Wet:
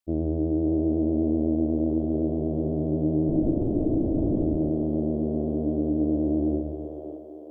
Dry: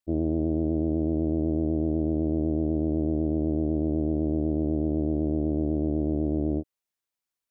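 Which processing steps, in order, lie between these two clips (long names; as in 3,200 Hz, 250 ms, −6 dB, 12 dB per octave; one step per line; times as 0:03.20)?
0:03.29–0:04.43: linear-prediction vocoder at 8 kHz whisper
echo with a time of its own for lows and highs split 370 Hz, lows 134 ms, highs 568 ms, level −4.5 dB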